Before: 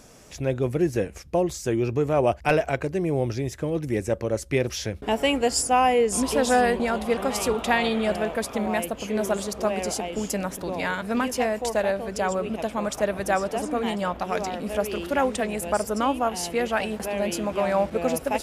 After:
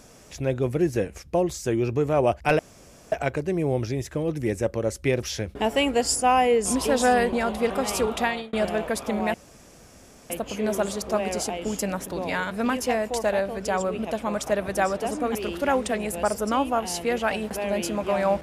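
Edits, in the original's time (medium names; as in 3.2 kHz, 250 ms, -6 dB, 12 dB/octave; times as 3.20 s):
2.59 s: insert room tone 0.53 s
7.63–8.00 s: fade out
8.81 s: insert room tone 0.96 s
13.86–14.84 s: delete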